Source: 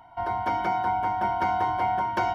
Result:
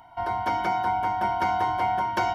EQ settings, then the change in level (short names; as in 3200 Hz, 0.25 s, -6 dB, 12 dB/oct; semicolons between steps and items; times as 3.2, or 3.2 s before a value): high shelf 3400 Hz +7.5 dB; 0.0 dB